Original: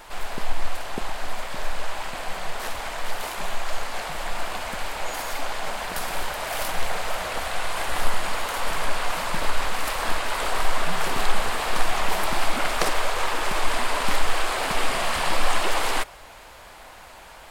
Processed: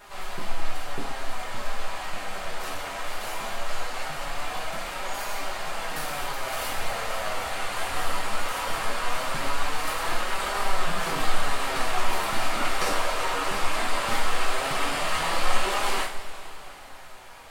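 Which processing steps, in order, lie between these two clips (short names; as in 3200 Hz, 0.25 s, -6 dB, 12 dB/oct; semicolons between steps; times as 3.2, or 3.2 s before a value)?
flange 0.19 Hz, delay 4.8 ms, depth 6.1 ms, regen +45%; two-slope reverb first 0.44 s, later 3.7 s, from -18 dB, DRR -4.5 dB; gain -3.5 dB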